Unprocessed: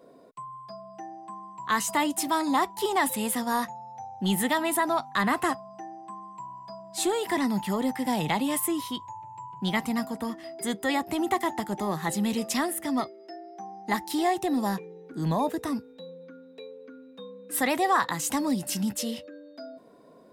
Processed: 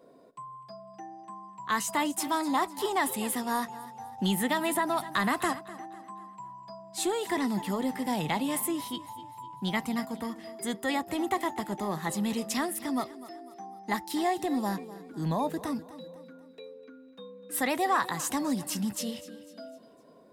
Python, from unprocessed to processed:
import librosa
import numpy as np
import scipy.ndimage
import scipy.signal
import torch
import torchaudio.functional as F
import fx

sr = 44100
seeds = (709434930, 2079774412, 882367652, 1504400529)

p1 = x + fx.echo_feedback(x, sr, ms=251, feedback_pct=44, wet_db=-16.5, dry=0)
p2 = fx.band_squash(p1, sr, depth_pct=70, at=(4.18, 5.59))
y = p2 * librosa.db_to_amplitude(-3.0)